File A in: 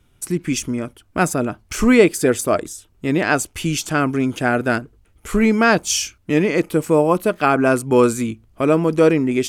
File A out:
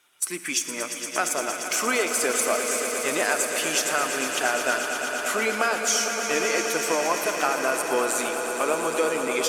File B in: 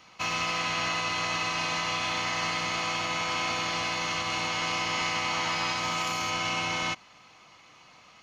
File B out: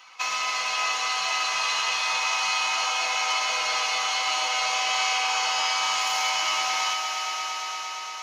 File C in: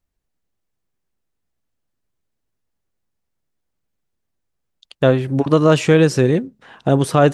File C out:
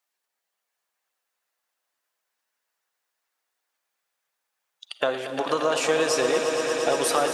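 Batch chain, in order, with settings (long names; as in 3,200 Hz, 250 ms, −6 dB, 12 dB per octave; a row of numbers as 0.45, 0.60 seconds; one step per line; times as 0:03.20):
spectral magnitudes quantised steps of 15 dB
high-pass filter 860 Hz 12 dB per octave
dynamic equaliser 2,100 Hz, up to −6 dB, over −36 dBFS, Q 0.85
downward compressor, threshold −26 dBFS
on a send: echo that builds up and dies away 116 ms, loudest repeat 5, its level −11 dB
on the sum: four-comb reverb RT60 3.5 s, DRR 10 dB
loudness normalisation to −24 LKFS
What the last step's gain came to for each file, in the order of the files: +5.0, +6.0, +5.5 decibels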